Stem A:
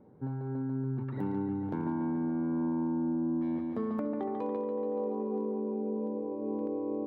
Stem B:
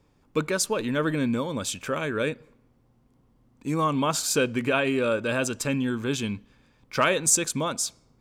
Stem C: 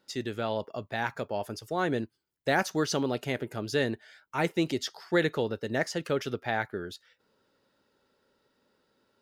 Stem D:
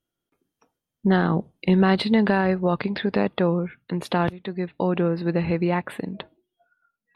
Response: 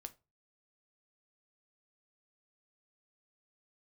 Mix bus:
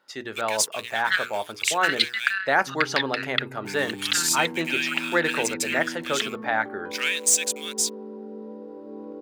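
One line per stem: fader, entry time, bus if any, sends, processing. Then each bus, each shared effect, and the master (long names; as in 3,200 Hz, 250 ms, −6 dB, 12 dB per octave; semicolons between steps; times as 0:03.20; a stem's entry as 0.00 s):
−3.0 dB, 2.45 s, no send, no processing
−3.0 dB, 0.00 s, no send, Butterworth high-pass 1,800 Hz 36 dB per octave; leveller curve on the samples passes 2; centre clipping without the shift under −40 dBFS
−3.5 dB, 0.00 s, no send, parametric band 1,200 Hz +12.5 dB 2.3 octaves
−0.5 dB, 0.00 s, no send, elliptic high-pass filter 1,400 Hz, stop band 40 dB; transient designer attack +12 dB, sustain −7 dB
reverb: not used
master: low-shelf EQ 130 Hz −8 dB; mains-hum notches 60/120/180/240/300/360/420/480 Hz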